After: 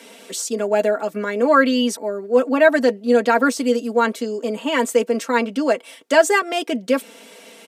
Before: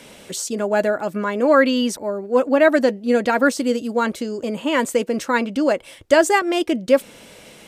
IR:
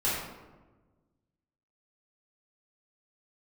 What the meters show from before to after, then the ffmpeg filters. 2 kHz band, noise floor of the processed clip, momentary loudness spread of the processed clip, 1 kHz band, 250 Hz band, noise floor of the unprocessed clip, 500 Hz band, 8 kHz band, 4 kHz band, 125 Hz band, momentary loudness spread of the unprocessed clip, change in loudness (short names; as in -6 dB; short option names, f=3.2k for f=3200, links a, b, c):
+1.0 dB, -45 dBFS, 10 LU, +1.0 dB, -0.5 dB, -45 dBFS, +0.5 dB, +1.0 dB, +1.0 dB, n/a, 10 LU, +0.5 dB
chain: -af "highpass=f=240:w=0.5412,highpass=f=240:w=1.3066,aecho=1:1:4.4:0.71,volume=-1dB"